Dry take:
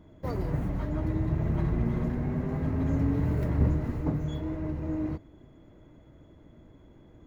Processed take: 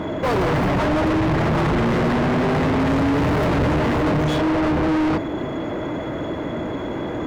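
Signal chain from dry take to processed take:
mid-hump overdrive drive 44 dB, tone 1,700 Hz, clips at −13 dBFS
level +1 dB

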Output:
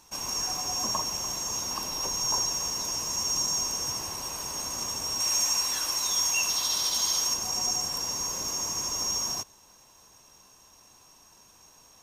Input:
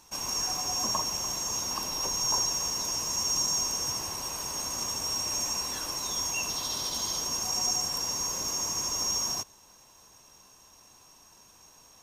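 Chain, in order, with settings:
0:05.20–0:07.34: tilt shelving filter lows −5.5 dB, about 700 Hz

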